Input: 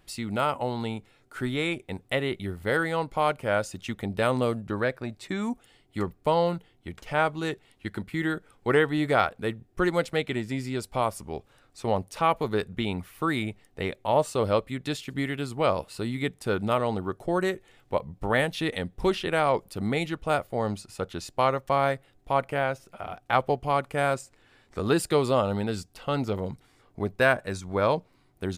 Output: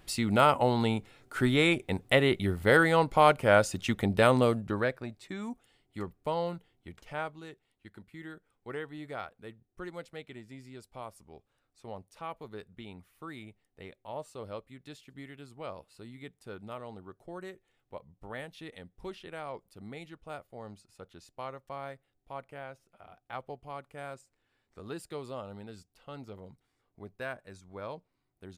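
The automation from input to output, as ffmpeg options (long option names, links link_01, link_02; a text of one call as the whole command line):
ffmpeg -i in.wav -af "volume=3.5dB,afade=type=out:start_time=4.02:duration=1.21:silence=0.251189,afade=type=out:start_time=6.96:duration=0.51:silence=0.375837" out.wav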